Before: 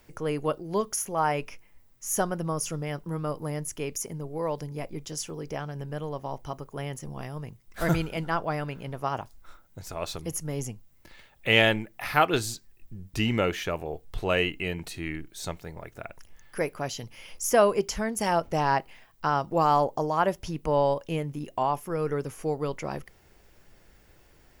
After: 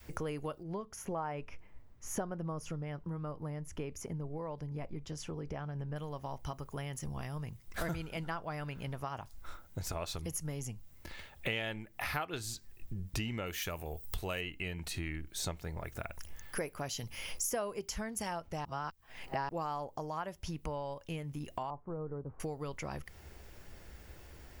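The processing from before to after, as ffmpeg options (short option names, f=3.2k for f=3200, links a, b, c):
-filter_complex "[0:a]asettb=1/sr,asplit=3[a][b][c];[a]atrim=end=0.634[d];[b]atrim=start=0.63:end=5.96,asetpts=PTS-STARTPTS,afade=t=in:d=0.004:c=qsin,afade=t=out:st=5.326:d=0.004:c=qsin,lowpass=f=1.3k:p=1[e];[c]atrim=start=5.956[f];[d][e]acrossfade=d=0.004:c1=hsin:c2=qsin[g];[g][f]acrossfade=d=0.004:c1=qsin:c2=hsin,asettb=1/sr,asplit=3[h][i][j];[h]atrim=end=13.464[k];[i]atrim=start=13.46:end=14.41,asetpts=PTS-STARTPTS,afade=t=in:d=0.004:c=qsin,afade=t=out:st=0.946:d=0.004:c=qsin,aemphasis=mode=production:type=50fm[l];[j]atrim=start=14.406[m];[k][l]acrossfade=d=0.004:c1=hsin:c2=qsin[n];[n][m]acrossfade=d=0.004:c1=qsin:c2=hsin,asettb=1/sr,asplit=3[o][p][q];[o]atrim=end=15.844[r];[p]atrim=start=15.84:end=17.95,asetpts=PTS-STARTPTS,afade=t=in:d=0.004:c=qsin,afade=t=out:st=2.106:d=0.004:c=qsin,highshelf=f=9k:g=7[s];[q]atrim=start=17.946[t];[r][s]acrossfade=d=0.004:c1=hsin:c2=qsin[u];[u][t]acrossfade=d=0.004:c1=qsin:c2=hsin,asettb=1/sr,asplit=3[v][w][x];[v]atrim=end=21.704[y];[w]atrim=start=21.7:end=22.4,asetpts=PTS-STARTPTS,afade=t=in:d=0.004:c=qsin,afade=t=out:st=0.696:d=0.004:c=qsin,lowpass=f=1k:w=0.5412,lowpass=f=1k:w=1.3066[z];[x]atrim=start=22.396[aa];[y][z]acrossfade=d=0.004:c1=hsin:c2=qsin[ab];[ab][aa]acrossfade=d=0.004:c1=qsin:c2=hsin,asplit=3[ac][ad][ae];[ac]atrim=end=18.652[af];[ad]atrim=start=18.648:end=19.492,asetpts=PTS-STARTPTS,areverse[ag];[ae]atrim=start=19.488[ah];[af][ag]acrossfade=d=0.004:c1=hsin:c2=hsin[ai];[ai][ah]acrossfade=d=0.004:c1=hsin:c2=hsin,equalizer=f=71:t=o:w=0.44:g=10.5,acompressor=threshold=-38dB:ratio=6,adynamicequalizer=threshold=0.00178:dfrequency=410:dqfactor=0.75:tfrequency=410:tqfactor=0.75:attack=5:release=100:ratio=0.375:range=3:mode=cutabove:tftype=bell,volume=3.5dB"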